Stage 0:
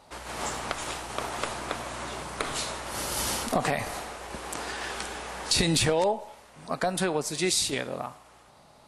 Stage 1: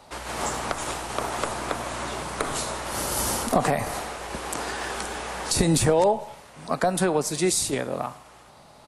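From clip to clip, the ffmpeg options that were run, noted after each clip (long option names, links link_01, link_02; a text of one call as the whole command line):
ffmpeg -i in.wav -filter_complex "[0:a]acrossover=split=220|1600|6100[link_01][link_02][link_03][link_04];[link_01]aecho=1:1:161|322|483|644:0.0841|0.0429|0.0219|0.0112[link_05];[link_03]acompressor=threshold=-42dB:ratio=6[link_06];[link_05][link_02][link_06][link_04]amix=inputs=4:normalize=0,volume=5dB" out.wav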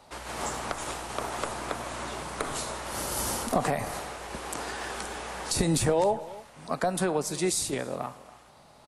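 ffmpeg -i in.wav -filter_complex "[0:a]asplit=2[link_01][link_02];[link_02]adelay=279.9,volume=-19dB,highshelf=frequency=4000:gain=-6.3[link_03];[link_01][link_03]amix=inputs=2:normalize=0,volume=-4.5dB" out.wav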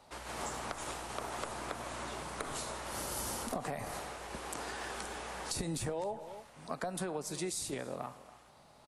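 ffmpeg -i in.wav -af "acompressor=threshold=-29dB:ratio=4,volume=-5.5dB" out.wav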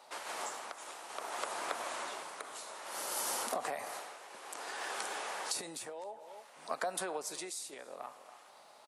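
ffmpeg -i in.wav -af "highpass=500,tremolo=f=0.58:d=0.66,volume=4dB" out.wav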